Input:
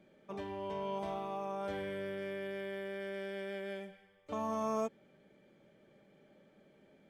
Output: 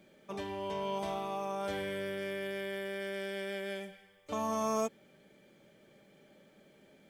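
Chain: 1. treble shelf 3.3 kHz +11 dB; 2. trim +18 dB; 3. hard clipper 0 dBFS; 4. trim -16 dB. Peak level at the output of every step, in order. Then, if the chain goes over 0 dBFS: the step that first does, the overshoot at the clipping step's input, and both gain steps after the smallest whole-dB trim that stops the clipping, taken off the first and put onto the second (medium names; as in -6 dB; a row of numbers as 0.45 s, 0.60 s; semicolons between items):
-22.5 dBFS, -4.5 dBFS, -4.5 dBFS, -20.5 dBFS; nothing clips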